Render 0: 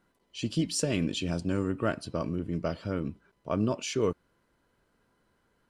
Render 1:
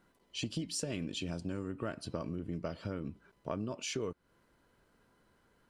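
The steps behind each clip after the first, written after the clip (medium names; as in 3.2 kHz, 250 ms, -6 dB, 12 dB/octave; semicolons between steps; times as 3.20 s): compression, threshold -36 dBFS, peak gain reduction 13.5 dB; trim +1.5 dB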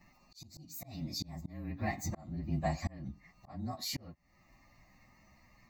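frequency axis rescaled in octaves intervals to 115%; slow attack 567 ms; static phaser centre 2.2 kHz, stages 8; trim +13 dB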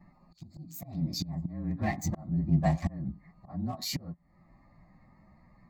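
local Wiener filter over 15 samples; peaking EQ 170 Hz +8.5 dB 0.41 oct; trim +4 dB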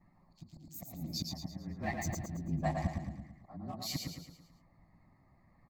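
harmonic-percussive split harmonic -11 dB; on a send: feedback delay 111 ms, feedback 46%, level -4 dB; on the sum: trim -3 dB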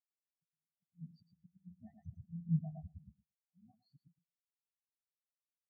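peak limiter -29.5 dBFS, peak gain reduction 8 dB; spectral contrast expander 4:1; trim +6 dB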